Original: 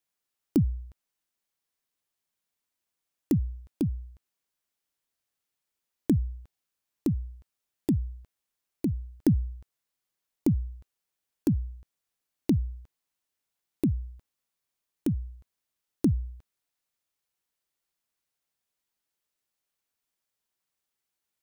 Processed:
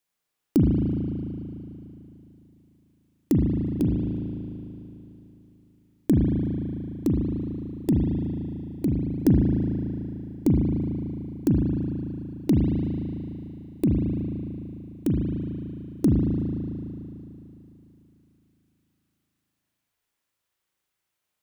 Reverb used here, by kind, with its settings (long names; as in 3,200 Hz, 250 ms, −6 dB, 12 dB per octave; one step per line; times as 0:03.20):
spring reverb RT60 3.2 s, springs 37 ms, chirp 70 ms, DRR −2 dB
level +2.5 dB